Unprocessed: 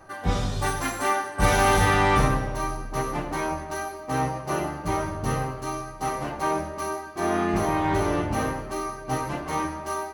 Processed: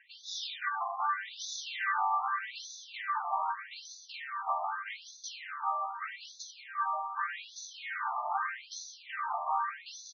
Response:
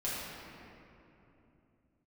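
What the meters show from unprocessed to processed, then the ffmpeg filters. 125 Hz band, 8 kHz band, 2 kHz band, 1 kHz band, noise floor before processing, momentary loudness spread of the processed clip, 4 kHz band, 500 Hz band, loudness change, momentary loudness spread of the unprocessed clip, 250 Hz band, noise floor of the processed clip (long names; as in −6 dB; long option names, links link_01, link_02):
below −40 dB, −10.0 dB, −7.5 dB, −6.5 dB, −39 dBFS, 11 LU, −5.5 dB, −22.5 dB, −9.5 dB, 11 LU, below −40 dB, −54 dBFS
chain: -af "highpass=650,acompressor=threshold=-30dB:ratio=6,aecho=1:1:958:0.335,afftfilt=real='re*between(b*sr/1024,860*pow(4900/860,0.5+0.5*sin(2*PI*0.82*pts/sr))/1.41,860*pow(4900/860,0.5+0.5*sin(2*PI*0.82*pts/sr))*1.41)':imag='im*between(b*sr/1024,860*pow(4900/860,0.5+0.5*sin(2*PI*0.82*pts/sr))/1.41,860*pow(4900/860,0.5+0.5*sin(2*PI*0.82*pts/sr))*1.41)':win_size=1024:overlap=0.75,volume=4dB"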